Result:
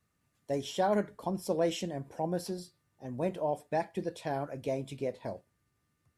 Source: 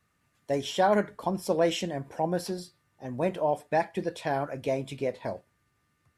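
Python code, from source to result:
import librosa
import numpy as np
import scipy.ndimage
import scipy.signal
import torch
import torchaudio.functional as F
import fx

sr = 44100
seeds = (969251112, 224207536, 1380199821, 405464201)

y = fx.peak_eq(x, sr, hz=1700.0, db=-5.5, octaves=2.4)
y = y * 10.0 ** (-3.0 / 20.0)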